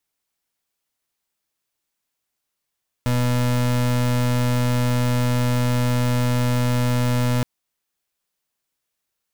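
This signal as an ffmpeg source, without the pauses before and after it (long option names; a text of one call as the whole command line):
ffmpeg -f lavfi -i "aevalsrc='0.106*(2*lt(mod(123*t,1),0.32)-1)':duration=4.37:sample_rate=44100" out.wav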